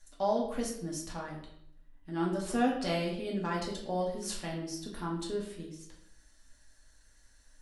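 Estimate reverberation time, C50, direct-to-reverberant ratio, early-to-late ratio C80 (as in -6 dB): 0.70 s, 5.5 dB, -3.5 dB, 8.5 dB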